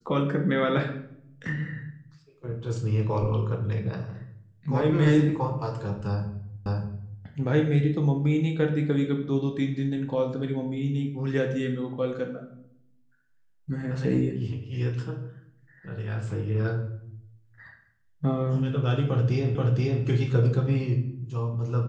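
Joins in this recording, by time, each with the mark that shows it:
6.66 repeat of the last 0.58 s
19.55 repeat of the last 0.48 s

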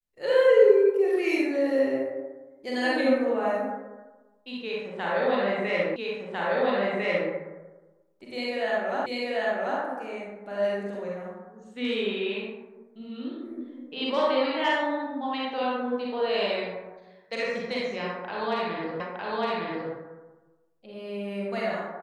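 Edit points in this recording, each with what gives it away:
5.96 repeat of the last 1.35 s
9.06 repeat of the last 0.74 s
19 repeat of the last 0.91 s

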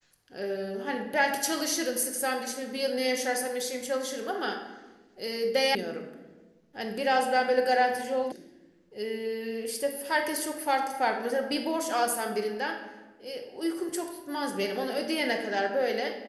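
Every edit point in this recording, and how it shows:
5.75 sound cut off
8.32 sound cut off

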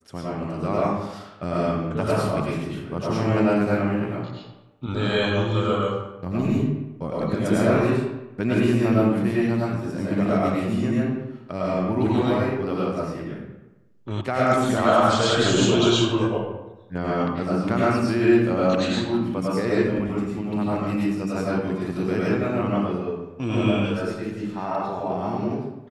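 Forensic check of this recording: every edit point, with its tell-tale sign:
14.21 sound cut off

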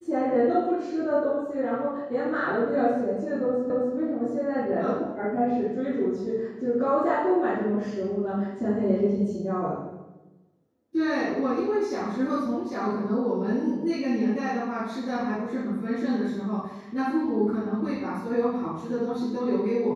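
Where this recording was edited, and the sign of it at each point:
3.7 repeat of the last 0.27 s

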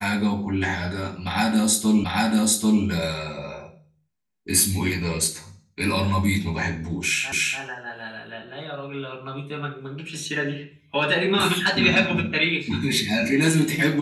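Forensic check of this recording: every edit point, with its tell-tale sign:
2.04 repeat of the last 0.79 s
7.32 repeat of the last 0.29 s

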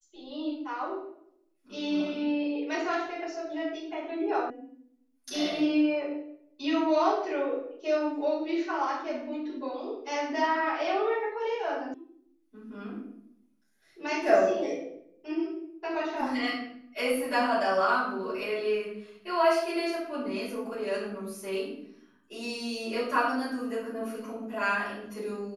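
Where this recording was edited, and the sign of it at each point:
4.5 sound cut off
11.94 sound cut off

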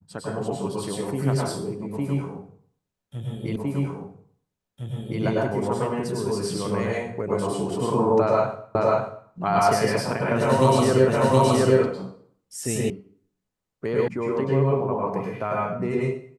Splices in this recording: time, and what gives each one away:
3.56 repeat of the last 1.66 s
8.75 repeat of the last 0.54 s
11.08 repeat of the last 0.72 s
12.9 sound cut off
14.08 sound cut off

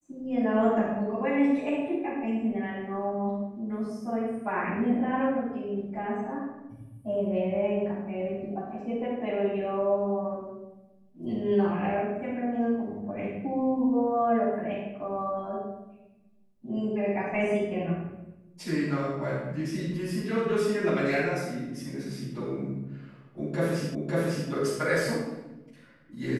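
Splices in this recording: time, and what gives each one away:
23.95 repeat of the last 0.55 s

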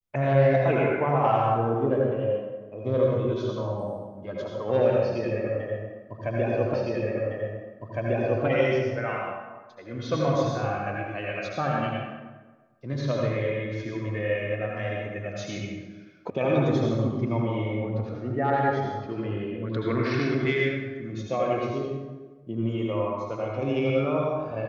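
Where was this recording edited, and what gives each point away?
6.74 repeat of the last 1.71 s
16.3 sound cut off

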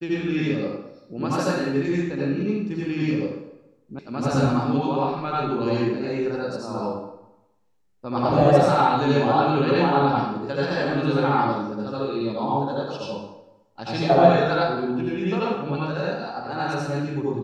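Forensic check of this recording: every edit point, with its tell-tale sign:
3.99 sound cut off

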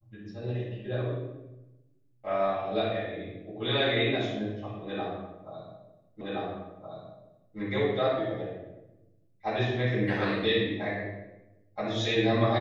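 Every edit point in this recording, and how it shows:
6.21 repeat of the last 1.37 s

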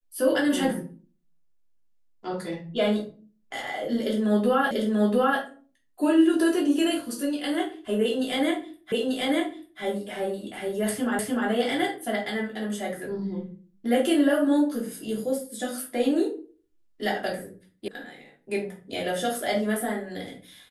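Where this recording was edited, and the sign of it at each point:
4.71 repeat of the last 0.69 s
8.92 repeat of the last 0.89 s
11.19 repeat of the last 0.3 s
17.88 sound cut off

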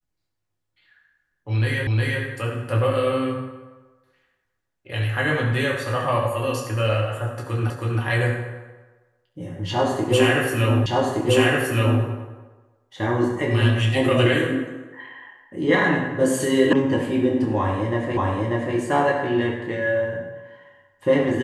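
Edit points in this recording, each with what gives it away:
1.87 repeat of the last 0.36 s
7.7 repeat of the last 0.32 s
10.86 repeat of the last 1.17 s
16.73 sound cut off
18.17 repeat of the last 0.59 s

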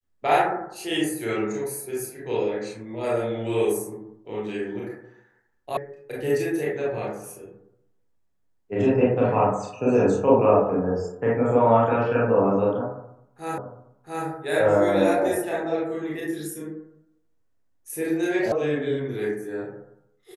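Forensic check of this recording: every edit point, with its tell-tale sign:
5.77 sound cut off
13.58 repeat of the last 0.68 s
18.52 sound cut off

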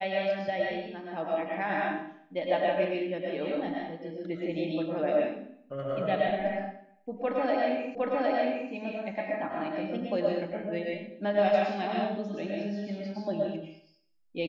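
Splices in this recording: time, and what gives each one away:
7.95 repeat of the last 0.76 s

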